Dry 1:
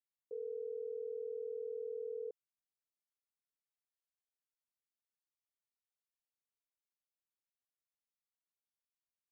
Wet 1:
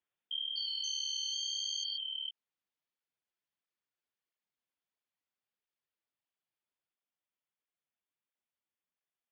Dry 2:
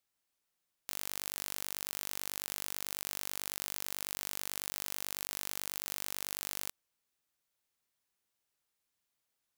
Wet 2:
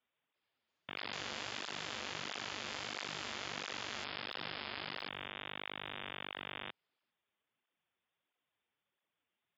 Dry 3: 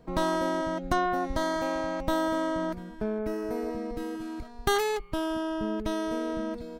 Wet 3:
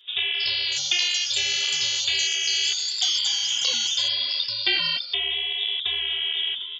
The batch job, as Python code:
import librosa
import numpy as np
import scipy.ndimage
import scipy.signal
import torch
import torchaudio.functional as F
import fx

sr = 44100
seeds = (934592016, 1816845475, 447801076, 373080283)

y = fx.freq_invert(x, sr, carrier_hz=3600)
y = fx.rider(y, sr, range_db=10, speed_s=0.5)
y = fx.echo_pitch(y, sr, ms=343, semitones=6, count=2, db_per_echo=-3.0)
y = scipy.signal.sosfilt(scipy.signal.butter(2, 110.0, 'highpass', fs=sr, output='sos'), y)
y = fx.flanger_cancel(y, sr, hz=1.5, depth_ms=7.5)
y = y * 10.0 ** (6.0 / 20.0)